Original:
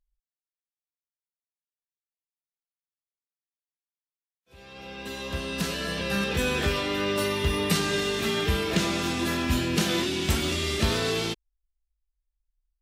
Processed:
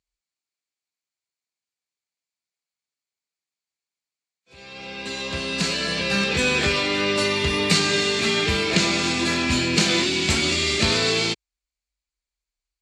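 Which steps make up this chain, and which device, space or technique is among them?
car door speaker (cabinet simulation 90–8900 Hz, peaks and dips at 2.3 kHz +8 dB, 4.4 kHz +9 dB, 7.2 kHz +7 dB); trim +3.5 dB

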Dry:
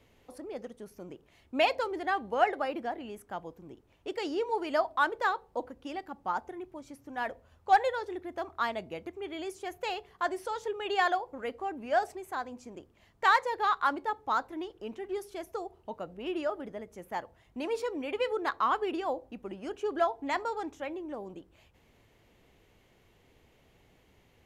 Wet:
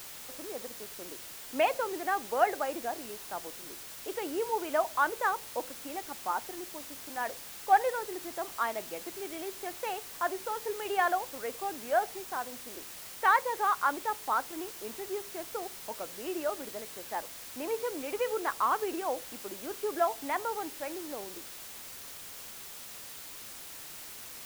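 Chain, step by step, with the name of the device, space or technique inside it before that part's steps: wax cylinder (band-pass 300–2300 Hz; wow and flutter 27 cents; white noise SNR 11 dB)

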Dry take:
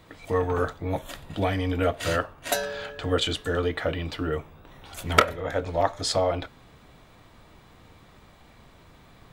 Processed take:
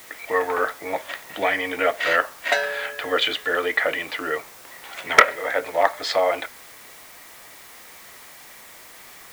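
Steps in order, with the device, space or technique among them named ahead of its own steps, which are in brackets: drive-through speaker (band-pass 510–3800 Hz; peaking EQ 2 kHz +10 dB 0.51 oct; hard clipper -7.5 dBFS, distortion -14 dB; white noise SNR 21 dB); trim +5.5 dB

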